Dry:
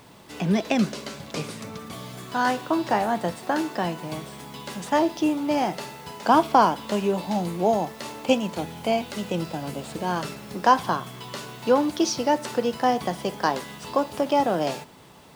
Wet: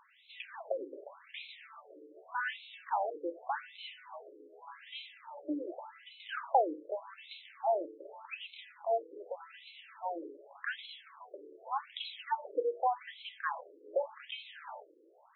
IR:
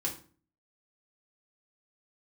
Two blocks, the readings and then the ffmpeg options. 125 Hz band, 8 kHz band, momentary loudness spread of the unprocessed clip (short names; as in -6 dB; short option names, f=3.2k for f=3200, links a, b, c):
under -40 dB, under -40 dB, 15 LU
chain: -filter_complex "[0:a]lowpass=f=5k:t=q:w=2,asplit=2[a][b];[1:a]atrim=start_sample=2205,lowpass=4k[c];[b][c]afir=irnorm=-1:irlink=0,volume=-16dB[d];[a][d]amix=inputs=2:normalize=0,afftfilt=real='re*between(b*sr/1024,380*pow(3000/380,0.5+0.5*sin(2*PI*0.85*pts/sr))/1.41,380*pow(3000/380,0.5+0.5*sin(2*PI*0.85*pts/sr))*1.41)':imag='im*between(b*sr/1024,380*pow(3000/380,0.5+0.5*sin(2*PI*0.85*pts/sr))/1.41,380*pow(3000/380,0.5+0.5*sin(2*PI*0.85*pts/sr))*1.41)':win_size=1024:overlap=0.75,volume=-8dB"